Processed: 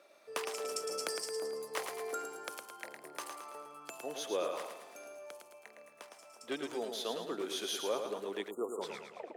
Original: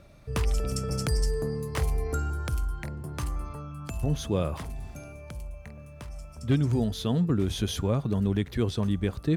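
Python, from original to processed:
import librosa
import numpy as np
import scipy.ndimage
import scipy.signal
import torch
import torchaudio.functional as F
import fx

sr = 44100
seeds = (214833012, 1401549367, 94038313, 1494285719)

p1 = fx.tape_stop_end(x, sr, length_s=0.61)
p2 = p1 + fx.echo_feedback(p1, sr, ms=110, feedback_pct=48, wet_db=-6, dry=0)
p3 = fx.spec_erase(p2, sr, start_s=8.5, length_s=0.32, low_hz=1400.0, high_hz=6700.0)
p4 = scipy.signal.sosfilt(scipy.signal.butter(4, 400.0, 'highpass', fs=sr, output='sos'), p3)
y = F.gain(torch.from_numpy(p4), -3.5).numpy()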